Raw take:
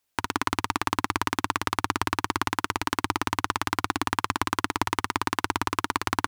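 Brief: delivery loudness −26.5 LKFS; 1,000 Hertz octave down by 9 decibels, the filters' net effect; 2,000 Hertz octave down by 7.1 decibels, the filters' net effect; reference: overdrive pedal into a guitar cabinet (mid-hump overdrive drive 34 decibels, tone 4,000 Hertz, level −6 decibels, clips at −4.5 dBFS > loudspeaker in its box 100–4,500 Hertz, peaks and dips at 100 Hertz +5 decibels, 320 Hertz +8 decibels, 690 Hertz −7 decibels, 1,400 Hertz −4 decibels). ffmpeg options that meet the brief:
ffmpeg -i in.wav -filter_complex "[0:a]equalizer=frequency=1000:width_type=o:gain=-7,equalizer=frequency=2000:width_type=o:gain=-5,asplit=2[link_01][link_02];[link_02]highpass=frequency=720:poles=1,volume=34dB,asoftclip=type=tanh:threshold=-4.5dB[link_03];[link_01][link_03]amix=inputs=2:normalize=0,lowpass=frequency=4000:poles=1,volume=-6dB,highpass=100,equalizer=frequency=100:width_type=q:width=4:gain=5,equalizer=frequency=320:width_type=q:width=4:gain=8,equalizer=frequency=690:width_type=q:width=4:gain=-7,equalizer=frequency=1400:width_type=q:width=4:gain=-4,lowpass=frequency=4500:width=0.5412,lowpass=frequency=4500:width=1.3066,volume=-7dB" out.wav

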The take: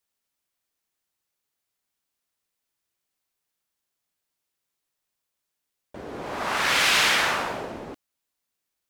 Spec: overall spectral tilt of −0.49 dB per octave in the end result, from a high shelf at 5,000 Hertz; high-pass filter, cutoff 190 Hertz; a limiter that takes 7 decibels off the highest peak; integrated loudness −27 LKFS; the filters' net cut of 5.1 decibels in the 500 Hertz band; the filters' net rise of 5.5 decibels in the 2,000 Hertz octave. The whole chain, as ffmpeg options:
ffmpeg -i in.wav -af "highpass=190,equalizer=frequency=500:width_type=o:gain=-7,equalizer=frequency=2000:width_type=o:gain=8.5,highshelf=frequency=5000:gain=-8.5,volume=-6dB,alimiter=limit=-18dB:level=0:latency=1" out.wav

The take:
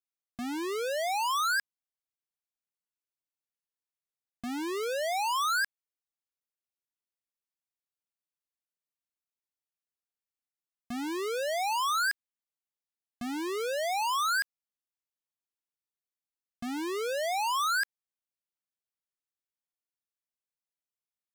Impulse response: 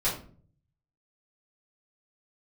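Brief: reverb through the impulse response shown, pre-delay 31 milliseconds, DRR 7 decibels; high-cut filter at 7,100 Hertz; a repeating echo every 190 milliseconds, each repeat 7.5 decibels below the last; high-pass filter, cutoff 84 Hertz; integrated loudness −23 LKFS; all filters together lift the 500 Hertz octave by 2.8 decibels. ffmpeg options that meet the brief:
-filter_complex "[0:a]highpass=84,lowpass=7100,equalizer=frequency=500:width_type=o:gain=3.5,aecho=1:1:190|380|570|760|950:0.422|0.177|0.0744|0.0312|0.0131,asplit=2[link_01][link_02];[1:a]atrim=start_sample=2205,adelay=31[link_03];[link_02][link_03]afir=irnorm=-1:irlink=0,volume=-16dB[link_04];[link_01][link_04]amix=inputs=2:normalize=0,volume=5.5dB"

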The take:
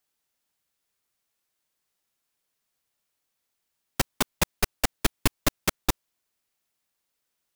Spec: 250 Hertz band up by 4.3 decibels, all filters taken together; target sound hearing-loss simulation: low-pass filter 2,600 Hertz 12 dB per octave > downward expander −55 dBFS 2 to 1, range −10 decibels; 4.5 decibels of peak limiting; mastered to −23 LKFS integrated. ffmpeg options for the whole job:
ffmpeg -i in.wav -af "equalizer=frequency=250:width_type=o:gain=5.5,alimiter=limit=-9dB:level=0:latency=1,lowpass=2600,agate=range=-10dB:threshold=-55dB:ratio=2,volume=9dB" out.wav

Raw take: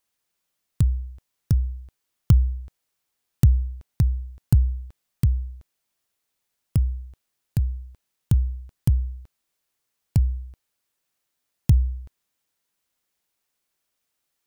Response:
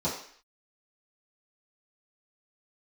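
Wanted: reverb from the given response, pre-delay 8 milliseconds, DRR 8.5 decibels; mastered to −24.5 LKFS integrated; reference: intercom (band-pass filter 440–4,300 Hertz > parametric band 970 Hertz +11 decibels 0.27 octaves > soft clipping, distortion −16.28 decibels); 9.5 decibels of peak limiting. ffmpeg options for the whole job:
-filter_complex "[0:a]alimiter=limit=-14dB:level=0:latency=1,asplit=2[link_01][link_02];[1:a]atrim=start_sample=2205,adelay=8[link_03];[link_02][link_03]afir=irnorm=-1:irlink=0,volume=-17dB[link_04];[link_01][link_04]amix=inputs=2:normalize=0,highpass=440,lowpass=4300,equalizer=frequency=970:width_type=o:width=0.27:gain=11,asoftclip=threshold=-31dB,volume=27.5dB"

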